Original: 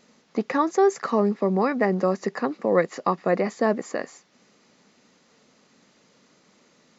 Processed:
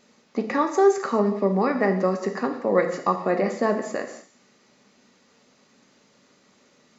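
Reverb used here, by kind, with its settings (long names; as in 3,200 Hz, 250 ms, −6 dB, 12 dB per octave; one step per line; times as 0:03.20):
reverb whose tail is shaped and stops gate 260 ms falling, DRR 4 dB
level −1 dB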